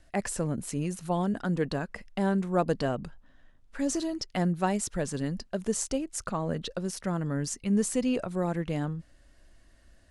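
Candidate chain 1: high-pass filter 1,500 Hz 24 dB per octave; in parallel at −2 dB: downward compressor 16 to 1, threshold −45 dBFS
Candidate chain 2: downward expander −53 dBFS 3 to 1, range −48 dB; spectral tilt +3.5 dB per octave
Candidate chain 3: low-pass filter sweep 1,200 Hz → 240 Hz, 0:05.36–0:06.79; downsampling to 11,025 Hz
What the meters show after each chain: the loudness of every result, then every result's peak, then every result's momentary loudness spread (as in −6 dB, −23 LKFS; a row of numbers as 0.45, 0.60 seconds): −38.0, −29.0, −28.5 LKFS; −13.0, −4.5, −10.5 dBFS; 10, 12, 10 LU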